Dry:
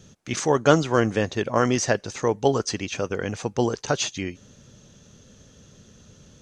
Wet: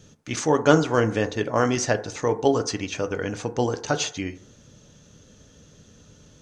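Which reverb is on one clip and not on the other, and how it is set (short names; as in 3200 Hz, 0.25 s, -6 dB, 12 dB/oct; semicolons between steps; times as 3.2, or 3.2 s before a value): FDN reverb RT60 0.57 s, low-frequency decay 0.7×, high-frequency decay 0.3×, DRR 8 dB; gain -1 dB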